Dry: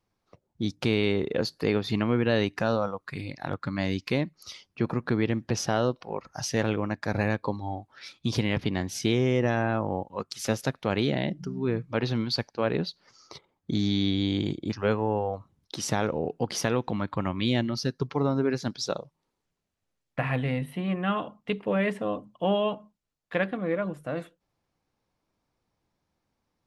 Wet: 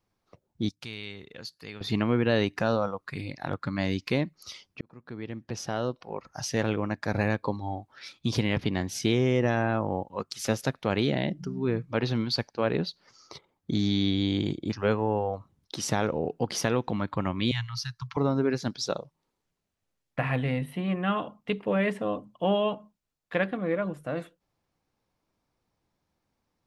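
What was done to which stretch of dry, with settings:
0.69–1.81 s: amplifier tone stack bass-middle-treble 5-5-5
4.81–7.36 s: fade in equal-power
17.51–18.17 s: elliptic band-stop 120–1000 Hz

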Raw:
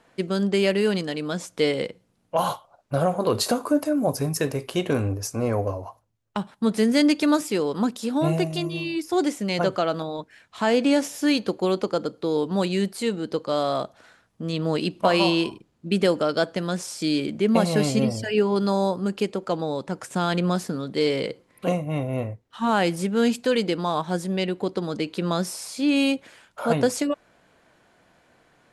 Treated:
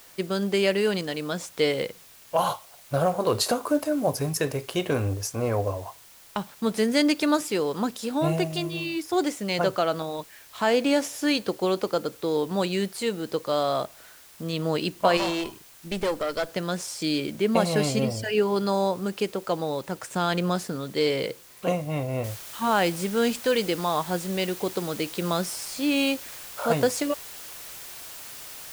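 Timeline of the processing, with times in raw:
1.70–4.31 s: short-mantissa float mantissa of 4-bit
15.17–16.49 s: valve stage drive 18 dB, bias 0.65
22.24 s: noise floor step -51 dB -41 dB
whole clip: peaking EQ 230 Hz -5 dB 1.1 oct

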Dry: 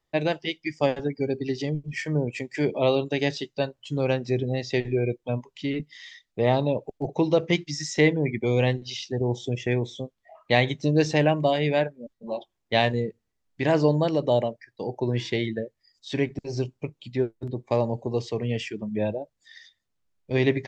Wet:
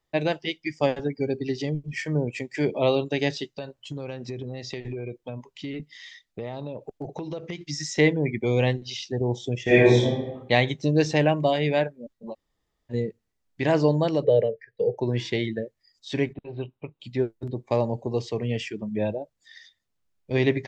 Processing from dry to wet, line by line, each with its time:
3.56–7.61 s: compression 10:1, threshold -29 dBFS
9.63–10.03 s: reverb throw, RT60 0.95 s, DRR -12 dB
12.32–12.92 s: room tone, crossfade 0.06 s
14.24–14.98 s: FFT filter 190 Hz 0 dB, 310 Hz -18 dB, 450 Hz +14 dB, 680 Hz -7 dB, 990 Hz -18 dB, 1.7 kHz +2 dB, 8.3 kHz -21 dB
16.33–17.00 s: rippled Chebyshev low-pass 3.9 kHz, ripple 6 dB

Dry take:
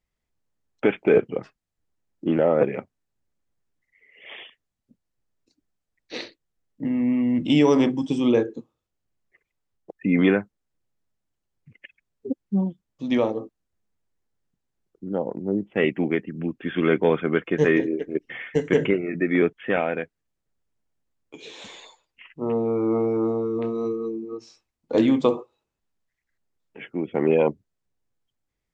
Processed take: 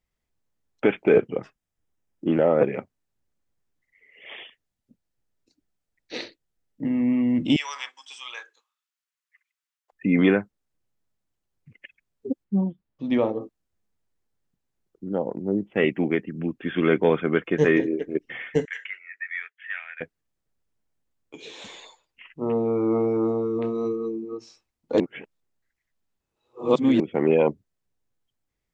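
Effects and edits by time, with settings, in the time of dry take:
1.26–2.32 s: band-stop 4.3 kHz, Q 6.5
4.39–6.83 s: band-stop 1.1 kHz
7.56–9.92 s: high-pass 1.2 kHz 24 dB/octave
12.44–13.41 s: distance through air 220 m
18.65–20.01 s: ladder high-pass 1.6 kHz, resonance 60%
25.00–27.00 s: reverse

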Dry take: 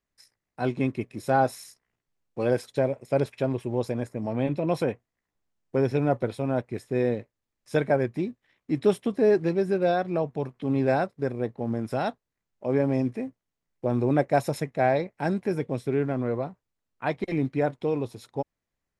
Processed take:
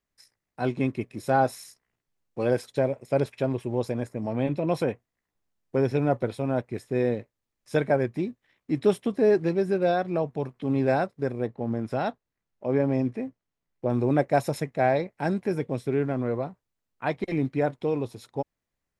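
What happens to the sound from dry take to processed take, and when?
11.47–13.90 s: treble shelf 7.5 kHz -11.5 dB

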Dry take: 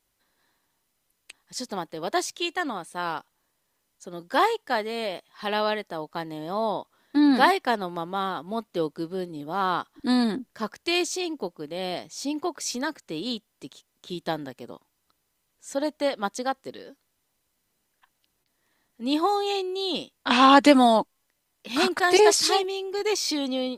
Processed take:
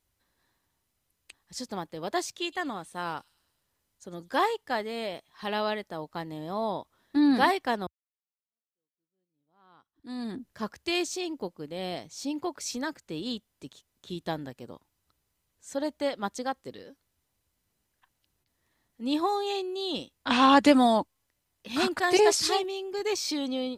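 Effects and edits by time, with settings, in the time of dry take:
2.42–4.40 s: feedback echo behind a high-pass 103 ms, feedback 58%, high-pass 5.5 kHz, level -12.5 dB
7.87–10.48 s: fade in exponential
whole clip: peaking EQ 74 Hz +12 dB 1.7 oct; trim -4.5 dB

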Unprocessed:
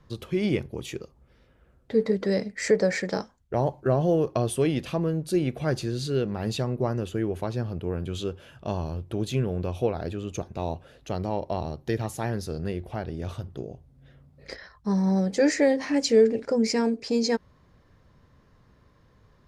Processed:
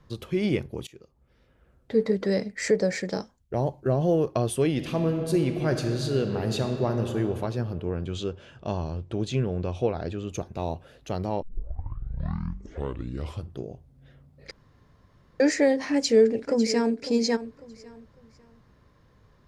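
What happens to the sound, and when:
0.87–2.02 s: fade in equal-power, from -21 dB
2.70–4.02 s: peaking EQ 1.3 kHz -5 dB 2 oct
4.70–7.17 s: reverb throw, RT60 2.6 s, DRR 5 dB
7.81–10.29 s: low-pass 7.9 kHz 24 dB/octave
11.42 s: tape start 2.19 s
14.51–15.40 s: room tone
15.92–17.02 s: echo throw 550 ms, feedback 30%, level -13 dB

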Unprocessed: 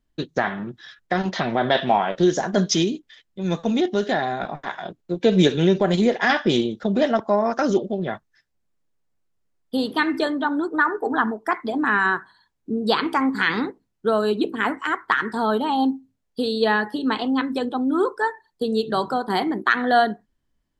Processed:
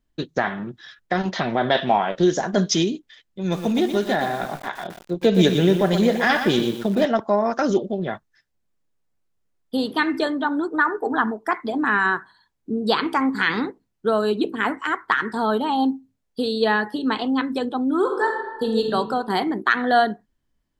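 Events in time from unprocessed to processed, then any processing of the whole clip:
3.40–7.05 s: bit-crushed delay 119 ms, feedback 35%, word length 6-bit, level -7.5 dB
17.99–18.85 s: reverb throw, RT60 1.2 s, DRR 2 dB

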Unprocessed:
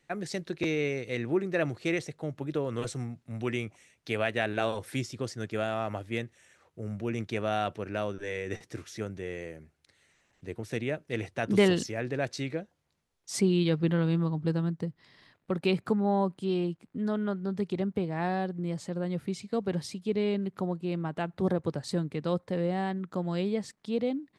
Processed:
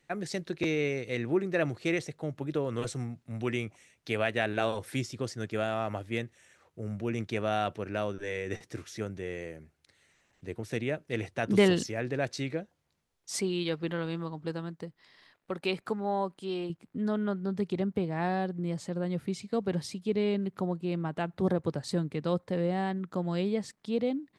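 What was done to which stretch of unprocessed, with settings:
13.36–16.70 s: peaking EQ 120 Hz -11.5 dB 2.6 oct

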